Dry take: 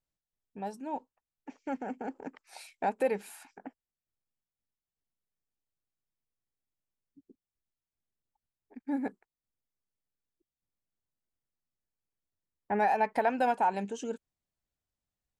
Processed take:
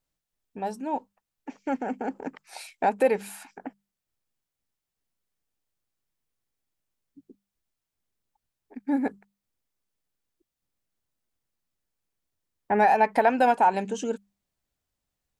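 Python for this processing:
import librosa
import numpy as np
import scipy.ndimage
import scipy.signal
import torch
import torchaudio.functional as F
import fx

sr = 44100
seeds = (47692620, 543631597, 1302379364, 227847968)

y = fx.hum_notches(x, sr, base_hz=50, count=4)
y = y * librosa.db_to_amplitude(7.0)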